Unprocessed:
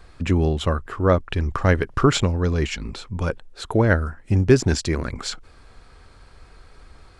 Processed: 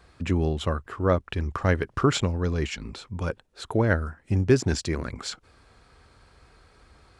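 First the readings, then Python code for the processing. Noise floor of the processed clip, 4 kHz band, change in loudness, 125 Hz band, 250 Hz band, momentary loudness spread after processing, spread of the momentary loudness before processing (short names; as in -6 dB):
-62 dBFS, -4.5 dB, -4.5 dB, -5.0 dB, -4.5 dB, 13 LU, 13 LU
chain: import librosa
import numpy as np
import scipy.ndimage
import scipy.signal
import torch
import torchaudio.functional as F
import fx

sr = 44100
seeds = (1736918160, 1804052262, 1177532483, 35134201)

y = scipy.signal.sosfilt(scipy.signal.butter(2, 54.0, 'highpass', fs=sr, output='sos'), x)
y = y * librosa.db_to_amplitude(-4.5)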